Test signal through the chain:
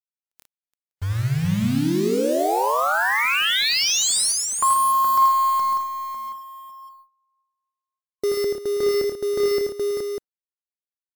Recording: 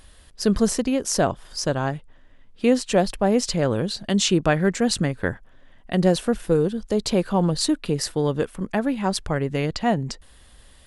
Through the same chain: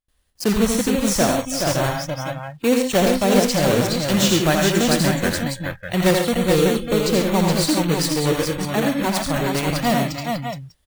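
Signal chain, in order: block floating point 3-bit; tapped delay 82/107/138/323/421/597 ms -4.5/-9/-9.5/-15.5/-4/-7 dB; gate with hold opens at -37 dBFS; spectral noise reduction 20 dB

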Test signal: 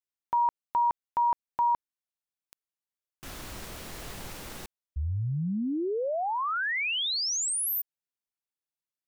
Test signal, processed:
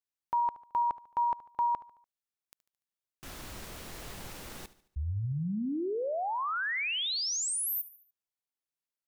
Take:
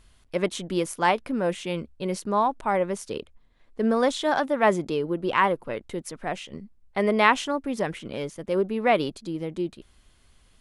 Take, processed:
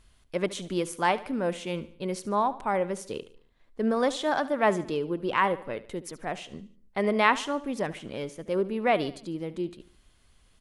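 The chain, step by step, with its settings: feedback echo 73 ms, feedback 46%, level -17 dB; gain -3 dB

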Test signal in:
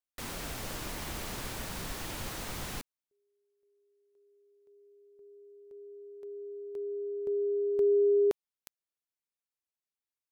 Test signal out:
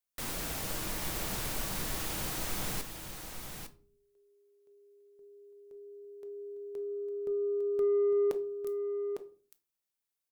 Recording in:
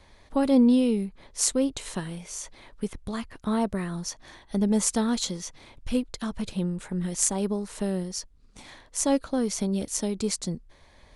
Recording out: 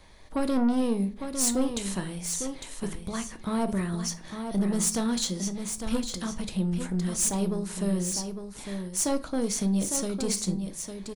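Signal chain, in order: high shelf 7500 Hz +7 dB; soft clip -21 dBFS; echo 0.854 s -7.5 dB; shoebox room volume 310 m³, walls furnished, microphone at 0.6 m

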